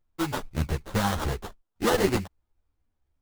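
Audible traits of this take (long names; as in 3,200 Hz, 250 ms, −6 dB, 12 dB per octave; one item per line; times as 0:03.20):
aliases and images of a low sample rate 2,400 Hz, jitter 20%
a shimmering, thickened sound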